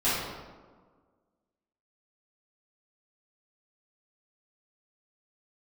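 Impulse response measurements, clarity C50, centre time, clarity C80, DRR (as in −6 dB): −1.5 dB, 93 ms, 1.5 dB, −13.5 dB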